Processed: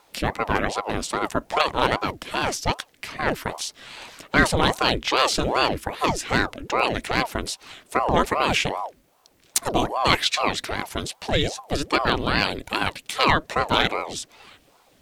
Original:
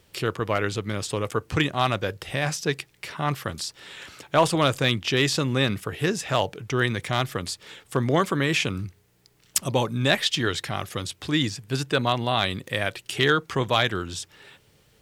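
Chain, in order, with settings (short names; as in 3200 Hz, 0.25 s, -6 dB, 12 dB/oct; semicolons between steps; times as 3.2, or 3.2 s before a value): ring modulator with a swept carrier 530 Hz, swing 75%, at 2.5 Hz; gain +4.5 dB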